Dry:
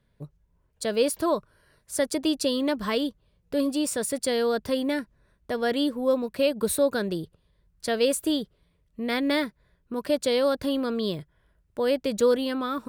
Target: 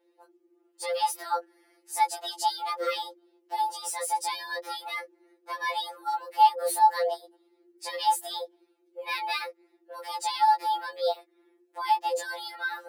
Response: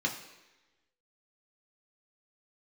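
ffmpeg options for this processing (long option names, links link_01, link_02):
-af "afreqshift=310,afftfilt=real='re*2.83*eq(mod(b,8),0)':imag='im*2.83*eq(mod(b,8),0)':win_size=2048:overlap=0.75"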